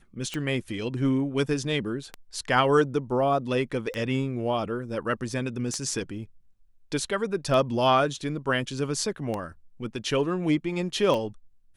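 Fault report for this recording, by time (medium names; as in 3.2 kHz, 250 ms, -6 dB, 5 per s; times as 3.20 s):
tick 33 1/3 rpm -17 dBFS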